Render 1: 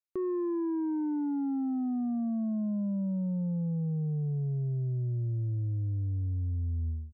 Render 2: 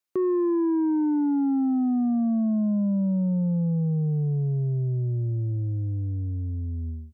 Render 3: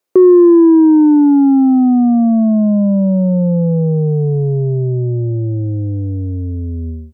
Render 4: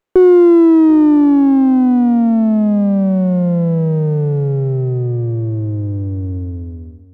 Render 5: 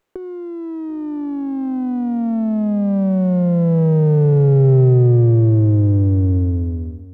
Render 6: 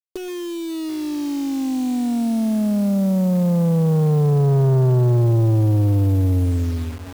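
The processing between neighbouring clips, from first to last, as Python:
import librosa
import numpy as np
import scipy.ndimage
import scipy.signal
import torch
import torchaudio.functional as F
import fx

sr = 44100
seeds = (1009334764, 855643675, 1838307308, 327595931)

y1 = scipy.signal.sosfilt(scipy.signal.butter(2, 120.0, 'highpass', fs=sr, output='sos'), x)
y1 = y1 * 10.0 ** (8.0 / 20.0)
y2 = fx.peak_eq(y1, sr, hz=470.0, db=12.5, octaves=1.6)
y2 = y2 * 10.0 ** (7.5 / 20.0)
y3 = fx.fade_out_tail(y2, sr, length_s=0.77)
y3 = y3 + 10.0 ** (-21.5 / 20.0) * np.pad(y3, (int(735 * sr / 1000.0), 0))[:len(y3)]
y3 = fx.running_max(y3, sr, window=9)
y3 = y3 * 10.0 ** (-1.0 / 20.0)
y4 = fx.over_compress(y3, sr, threshold_db=-16.0, ratio=-0.5)
y4 = y4 * 10.0 ** (1.5 / 20.0)
y5 = fx.quant_dither(y4, sr, seeds[0], bits=6, dither='none')
y5 = 10.0 ** (-12.5 / 20.0) * np.tanh(y5 / 10.0 ** (-12.5 / 20.0))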